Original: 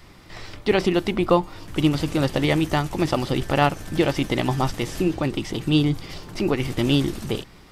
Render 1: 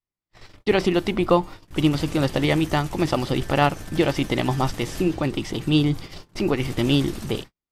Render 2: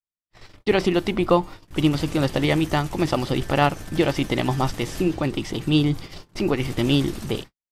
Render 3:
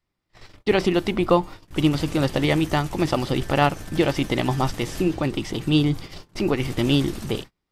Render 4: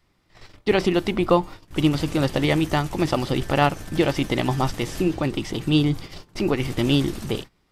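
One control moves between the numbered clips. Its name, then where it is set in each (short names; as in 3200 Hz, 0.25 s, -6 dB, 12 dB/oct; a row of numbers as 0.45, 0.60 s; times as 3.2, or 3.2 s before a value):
gate, range: -47, -60, -32, -18 dB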